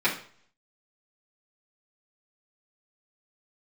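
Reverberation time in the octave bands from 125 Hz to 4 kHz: 0.65, 0.50, 0.50, 0.50, 0.45, 0.45 seconds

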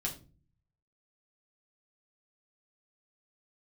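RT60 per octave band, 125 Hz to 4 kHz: 1.0, 0.70, 0.40, 0.30, 0.25, 0.25 seconds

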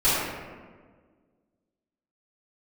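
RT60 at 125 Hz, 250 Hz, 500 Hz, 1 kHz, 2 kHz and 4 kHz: 1.8, 2.1, 1.8, 1.4, 1.2, 0.85 seconds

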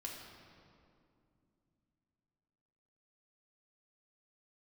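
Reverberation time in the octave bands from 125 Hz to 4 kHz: 3.9, 3.8, 2.8, 2.3, 1.8, 1.5 seconds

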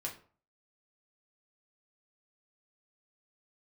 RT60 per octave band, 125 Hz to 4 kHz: 0.50, 0.45, 0.45, 0.45, 0.35, 0.30 seconds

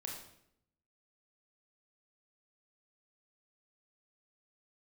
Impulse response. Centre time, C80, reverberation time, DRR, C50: 41 ms, 6.5 dB, 0.75 s, −1.0 dB, 3.5 dB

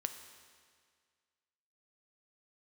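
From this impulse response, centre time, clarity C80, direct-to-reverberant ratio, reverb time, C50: 23 ms, 10.0 dB, 7.0 dB, 1.9 s, 9.0 dB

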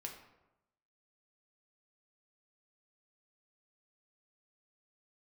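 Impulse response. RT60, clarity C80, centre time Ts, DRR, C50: 0.95 s, 9.5 dB, 26 ms, 0.5 dB, 6.5 dB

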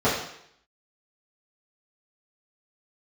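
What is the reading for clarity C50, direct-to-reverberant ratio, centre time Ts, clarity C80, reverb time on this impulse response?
4.0 dB, −12.0 dB, 44 ms, 7.0 dB, 0.70 s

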